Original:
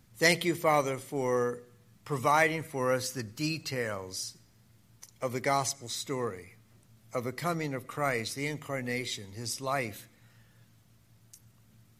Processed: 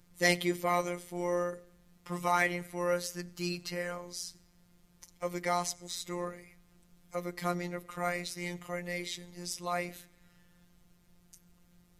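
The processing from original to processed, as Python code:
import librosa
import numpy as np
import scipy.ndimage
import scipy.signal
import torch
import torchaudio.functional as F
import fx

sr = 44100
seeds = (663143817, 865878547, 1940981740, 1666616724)

y = fx.robotise(x, sr, hz=176.0)
y = fx.dmg_noise_colour(y, sr, seeds[0], colour='brown', level_db=-66.0)
y = y * librosa.db_to_amplitude(-1.0)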